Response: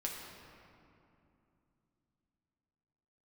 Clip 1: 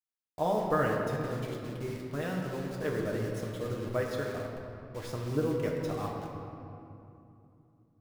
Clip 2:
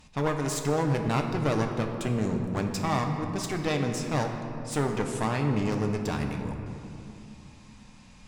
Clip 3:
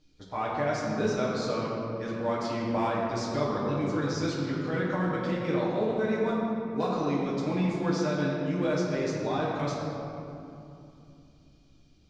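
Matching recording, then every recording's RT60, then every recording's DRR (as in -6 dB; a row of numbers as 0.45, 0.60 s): 1; 2.8, 2.8, 2.7 s; -2.0, 2.5, -7.0 dB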